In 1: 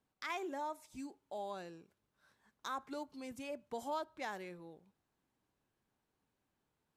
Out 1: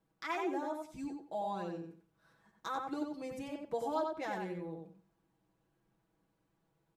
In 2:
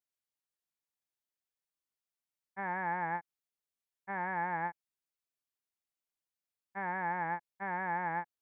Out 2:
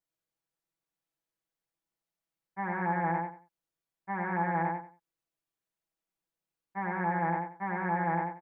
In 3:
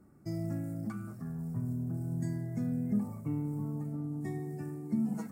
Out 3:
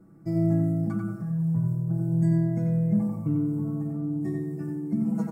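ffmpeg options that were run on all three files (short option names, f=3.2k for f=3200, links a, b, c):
-filter_complex "[0:a]tiltshelf=f=1.2k:g=4.5,aecho=1:1:6.1:0.85,asplit=2[a][b];[b]adelay=91,lowpass=f=4.2k:p=1,volume=-3.5dB,asplit=2[c][d];[d]adelay=91,lowpass=f=4.2k:p=1,volume=0.23,asplit=2[e][f];[f]adelay=91,lowpass=f=4.2k:p=1,volume=0.23[g];[a][c][e][g]amix=inputs=4:normalize=0"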